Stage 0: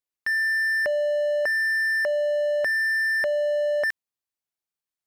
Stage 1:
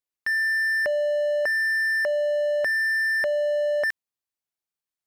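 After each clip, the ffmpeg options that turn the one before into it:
ffmpeg -i in.wav -af anull out.wav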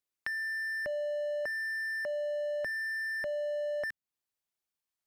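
ffmpeg -i in.wav -filter_complex "[0:a]acrossover=split=250[link_01][link_02];[link_02]acompressor=threshold=-38dB:ratio=3[link_03];[link_01][link_03]amix=inputs=2:normalize=0" out.wav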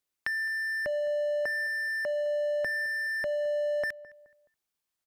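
ffmpeg -i in.wav -filter_complex "[0:a]asplit=2[link_01][link_02];[link_02]adelay=212,lowpass=frequency=1500:poles=1,volume=-18dB,asplit=2[link_03][link_04];[link_04]adelay=212,lowpass=frequency=1500:poles=1,volume=0.38,asplit=2[link_05][link_06];[link_06]adelay=212,lowpass=frequency=1500:poles=1,volume=0.38[link_07];[link_01][link_03][link_05][link_07]amix=inputs=4:normalize=0,volume=4dB" out.wav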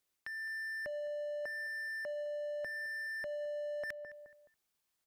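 ffmpeg -i in.wav -af "alimiter=level_in=5dB:limit=-24dB:level=0:latency=1:release=315,volume=-5dB,areverse,acompressor=threshold=-42dB:ratio=6,areverse,volume=2.5dB" out.wav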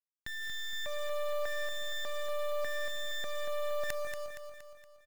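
ffmpeg -i in.wav -filter_complex "[0:a]acrusher=bits=6:dc=4:mix=0:aa=0.000001,asplit=2[link_01][link_02];[link_02]aecho=0:1:234|468|702|936|1170|1404:0.447|0.228|0.116|0.0593|0.0302|0.0154[link_03];[link_01][link_03]amix=inputs=2:normalize=0,volume=6dB" out.wav

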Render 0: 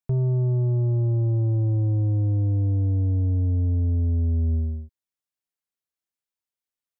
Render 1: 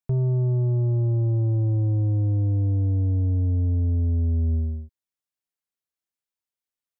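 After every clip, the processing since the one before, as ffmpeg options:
ffmpeg -i in.wav -af anull out.wav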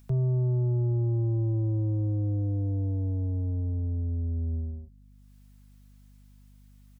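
ffmpeg -i in.wav -filter_complex "[0:a]aecho=1:1:6:0.34,acrossover=split=100|310[link_01][link_02][link_03];[link_03]acompressor=mode=upward:threshold=-47dB:ratio=2.5[link_04];[link_01][link_02][link_04]amix=inputs=3:normalize=0,aeval=exprs='val(0)+0.00355*(sin(2*PI*50*n/s)+sin(2*PI*2*50*n/s)/2+sin(2*PI*3*50*n/s)/3+sin(2*PI*4*50*n/s)/4+sin(2*PI*5*50*n/s)/5)':channel_layout=same,volume=-4dB" out.wav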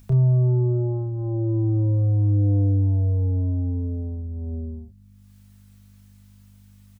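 ffmpeg -i in.wav -filter_complex "[0:a]asplit=2[link_01][link_02];[link_02]adelay=30,volume=-5dB[link_03];[link_01][link_03]amix=inputs=2:normalize=0,volume=5.5dB" out.wav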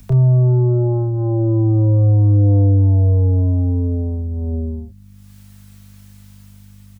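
ffmpeg -i in.wav -filter_complex "[0:a]acrossover=split=140|360[link_01][link_02][link_03];[link_02]alimiter=level_in=7dB:limit=-24dB:level=0:latency=1,volume=-7dB[link_04];[link_03]dynaudnorm=framelen=210:gausssize=7:maxgain=3.5dB[link_05];[link_01][link_04][link_05]amix=inputs=3:normalize=0,volume=8dB" out.wav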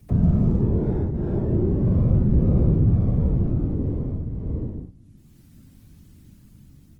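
ffmpeg -i in.wav -filter_complex "[0:a]acrossover=split=150|190|490[link_01][link_02][link_03][link_04];[link_04]aeval=exprs='max(val(0),0)':channel_layout=same[link_05];[link_01][link_02][link_03][link_05]amix=inputs=4:normalize=0,afftfilt=real='hypot(re,im)*cos(2*PI*random(0))':imag='hypot(re,im)*sin(2*PI*random(1))':win_size=512:overlap=0.75" -ar 48000 -c:a libopus -b:a 24k out.opus

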